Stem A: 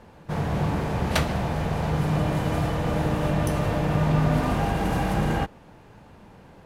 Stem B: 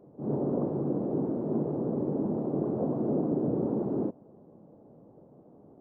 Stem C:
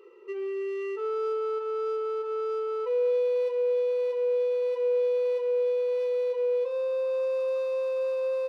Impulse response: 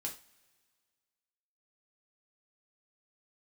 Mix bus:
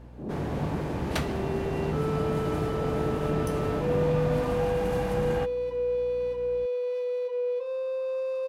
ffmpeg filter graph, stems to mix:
-filter_complex "[0:a]aeval=exprs='val(0)+0.0112*(sin(2*PI*60*n/s)+sin(2*PI*2*60*n/s)/2+sin(2*PI*3*60*n/s)/3+sin(2*PI*4*60*n/s)/4+sin(2*PI*5*60*n/s)/5)':channel_layout=same,volume=-6.5dB[link_01];[1:a]acompressor=threshold=-30dB:ratio=6,volume=-1.5dB[link_02];[2:a]adelay=950,volume=-2.5dB[link_03];[link_01][link_02][link_03]amix=inputs=3:normalize=0"

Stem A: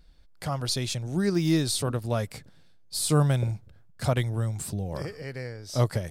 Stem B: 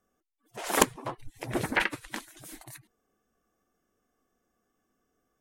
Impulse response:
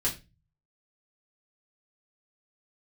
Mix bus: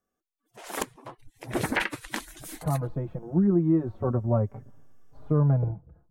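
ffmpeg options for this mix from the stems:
-filter_complex "[0:a]lowpass=frequency=1100:width=0.5412,lowpass=frequency=1100:width=1.3066,asplit=2[link_01][link_02];[link_02]adelay=4.5,afreqshift=0.34[link_03];[link_01][link_03]amix=inputs=2:normalize=1,adelay=2200,volume=-0.5dB[link_04];[1:a]volume=-1.5dB,afade=type=in:start_time=1.4:duration=0.27:silence=0.266073[link_05];[link_04][link_05]amix=inputs=2:normalize=0,acontrast=51,alimiter=limit=-14dB:level=0:latency=1:release=170"

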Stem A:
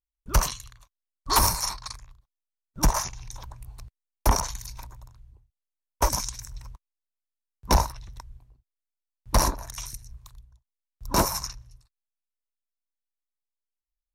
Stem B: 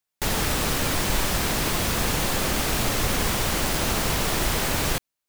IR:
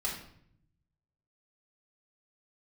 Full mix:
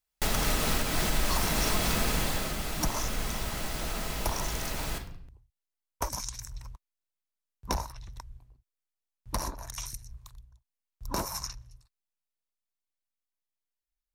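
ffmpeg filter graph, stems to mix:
-filter_complex "[0:a]acompressor=threshold=-27dB:ratio=6,volume=-1.5dB[link_01];[1:a]volume=-6dB,afade=type=out:start_time=1.9:duration=0.66:silence=0.354813,asplit=2[link_02][link_03];[link_03]volume=-4.5dB[link_04];[2:a]atrim=start_sample=2205[link_05];[link_04][link_05]afir=irnorm=-1:irlink=0[link_06];[link_01][link_02][link_06]amix=inputs=3:normalize=0,alimiter=limit=-16dB:level=0:latency=1:release=301"

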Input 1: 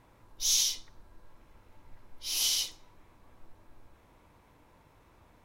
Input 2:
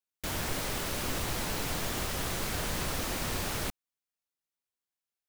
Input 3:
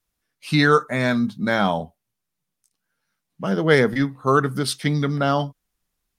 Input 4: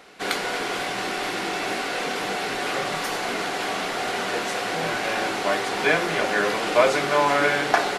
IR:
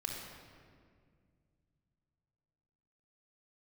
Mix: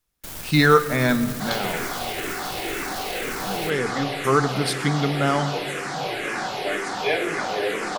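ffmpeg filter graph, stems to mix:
-filter_complex "[1:a]highshelf=frequency=7000:gain=10,aeval=exprs='clip(val(0),-1,0.0106)':channel_layout=same,volume=-3dB[link_01];[2:a]volume=7.5dB,afade=type=out:start_time=1.15:duration=0.42:silence=0.298538,afade=type=in:start_time=3.78:duration=0.61:silence=0.375837,asplit=2[link_02][link_03];[link_03]volume=-10dB[link_04];[3:a]asplit=2[link_05][link_06];[link_06]afreqshift=-2[link_07];[link_05][link_07]amix=inputs=2:normalize=1,adelay=1200,volume=-2dB,asplit=2[link_08][link_09];[link_09]volume=-6.5dB[link_10];[4:a]atrim=start_sample=2205[link_11];[link_04][link_10]amix=inputs=2:normalize=0[link_12];[link_12][link_11]afir=irnorm=-1:irlink=0[link_13];[link_01][link_02][link_08][link_13]amix=inputs=4:normalize=0"

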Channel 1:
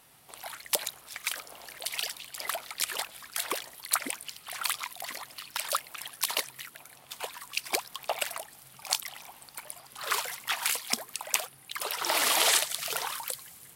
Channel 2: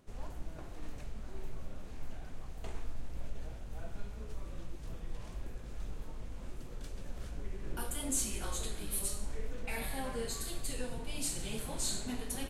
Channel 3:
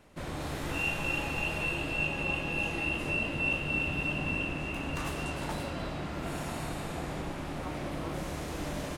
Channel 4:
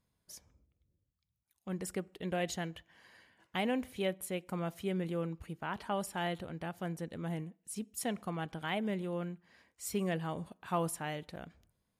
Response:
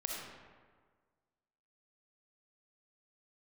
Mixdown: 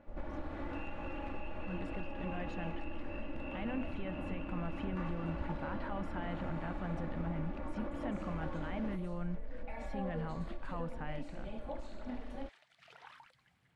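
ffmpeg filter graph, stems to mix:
-filter_complex "[0:a]equalizer=frequency=1100:width=2.1:gain=-6.5,acompressor=threshold=-32dB:ratio=12,volume=-8.5dB,afade=type=in:start_time=12.53:duration=0.47:silence=0.398107[link_01];[1:a]equalizer=frequency=640:width_type=o:width=0.77:gain=8.5,alimiter=level_in=2.5dB:limit=-24dB:level=0:latency=1:release=398,volume=-2.5dB,volume=-3.5dB[link_02];[2:a]volume=-4.5dB[link_03];[3:a]dynaudnorm=framelen=900:gausssize=7:maxgain=13.5dB,acrusher=bits=7:mix=0:aa=0.5,volume=-4dB[link_04];[link_01][link_04]amix=inputs=2:normalize=0,equalizer=frequency=440:width_type=o:width=1.4:gain=-10.5,alimiter=level_in=8.5dB:limit=-24dB:level=0:latency=1,volume=-8.5dB,volume=0dB[link_05];[link_02][link_03]amix=inputs=2:normalize=0,aecho=1:1:3.5:0.64,acompressor=threshold=-36dB:ratio=4,volume=0dB[link_06];[link_05][link_06]amix=inputs=2:normalize=0,lowpass=1700"

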